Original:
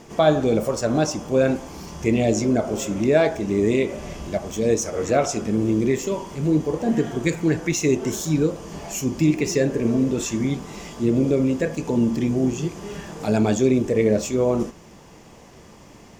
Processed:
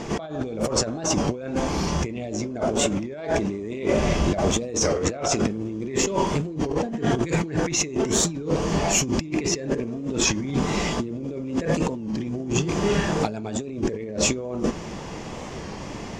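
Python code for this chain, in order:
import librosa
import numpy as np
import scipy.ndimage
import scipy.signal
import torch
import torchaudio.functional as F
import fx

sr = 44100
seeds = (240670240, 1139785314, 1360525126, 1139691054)

y = scipy.signal.sosfilt(scipy.signal.butter(2, 6300.0, 'lowpass', fs=sr, output='sos'), x)
y = fx.over_compress(y, sr, threshold_db=-31.0, ratio=-1.0)
y = fx.record_warp(y, sr, rpm=33.33, depth_cents=100.0)
y = y * librosa.db_to_amplitude(4.5)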